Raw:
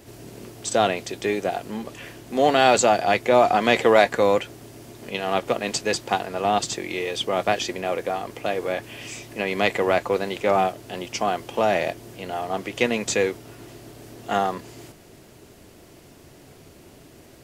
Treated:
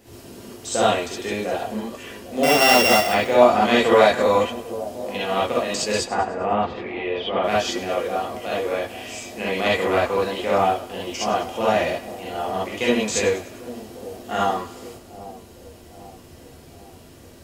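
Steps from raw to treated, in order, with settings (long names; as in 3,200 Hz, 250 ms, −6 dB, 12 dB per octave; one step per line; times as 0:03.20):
0:02.43–0:03.07: samples sorted by size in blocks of 16 samples
0:05.98–0:07.43: low-pass filter 1,900 Hz → 3,300 Hz 24 dB per octave
echo with a time of its own for lows and highs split 840 Hz, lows 796 ms, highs 100 ms, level −15 dB
reverb whose tail is shaped and stops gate 90 ms rising, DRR −6 dB
level −5.5 dB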